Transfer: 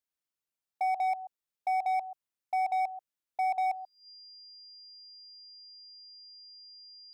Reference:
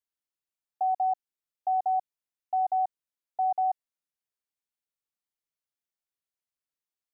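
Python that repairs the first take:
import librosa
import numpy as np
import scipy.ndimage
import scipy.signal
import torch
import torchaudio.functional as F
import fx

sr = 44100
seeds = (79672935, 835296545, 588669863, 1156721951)

y = fx.fix_declip(x, sr, threshold_db=-26.0)
y = fx.notch(y, sr, hz=4800.0, q=30.0)
y = fx.fix_echo_inverse(y, sr, delay_ms=134, level_db=-16.0)
y = fx.fix_level(y, sr, at_s=5.39, step_db=7.5)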